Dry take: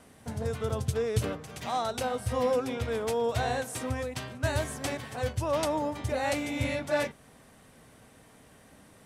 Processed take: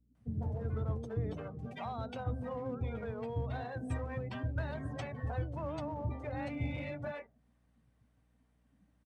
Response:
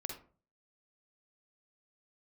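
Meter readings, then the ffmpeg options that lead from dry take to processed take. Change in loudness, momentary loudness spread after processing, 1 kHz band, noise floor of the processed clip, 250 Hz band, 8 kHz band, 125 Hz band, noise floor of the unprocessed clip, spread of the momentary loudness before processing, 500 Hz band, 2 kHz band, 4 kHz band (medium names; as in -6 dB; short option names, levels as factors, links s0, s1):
-8.0 dB, 5 LU, -11.0 dB, -72 dBFS, -6.0 dB, under -25 dB, -3.0 dB, -57 dBFS, 6 LU, -11.5 dB, -11.0 dB, -17.0 dB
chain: -filter_complex "[0:a]lowpass=f=3900:p=1,afftdn=nr=26:nf=-39,acrossover=split=180[s0][s1];[s0]asoftclip=type=tanh:threshold=0.0251[s2];[s1]acompressor=threshold=0.00891:ratio=10[s3];[s2][s3]amix=inputs=2:normalize=0,aeval=exprs='val(0)+0.0002*(sin(2*PI*60*n/s)+sin(2*PI*2*60*n/s)/2+sin(2*PI*3*60*n/s)/3+sin(2*PI*4*60*n/s)/4+sin(2*PI*5*60*n/s)/5)':c=same,asplit=2[s4][s5];[s5]asoftclip=type=hard:threshold=0.0133,volume=0.422[s6];[s4][s6]amix=inputs=2:normalize=0,acrossover=split=370[s7][s8];[s8]adelay=150[s9];[s7][s9]amix=inputs=2:normalize=0"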